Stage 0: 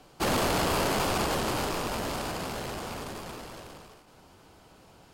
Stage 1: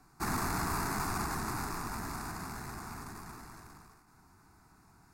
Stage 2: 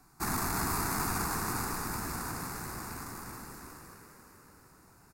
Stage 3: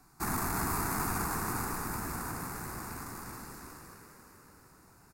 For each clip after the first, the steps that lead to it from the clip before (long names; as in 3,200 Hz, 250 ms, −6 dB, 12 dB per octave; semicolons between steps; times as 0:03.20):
phaser with its sweep stopped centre 1,300 Hz, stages 4; level −3.5 dB
high-shelf EQ 8,200 Hz +9 dB; echo with shifted repeats 349 ms, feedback 56%, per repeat +52 Hz, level −7.5 dB
dynamic equaliser 4,500 Hz, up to −5 dB, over −50 dBFS, Q 0.93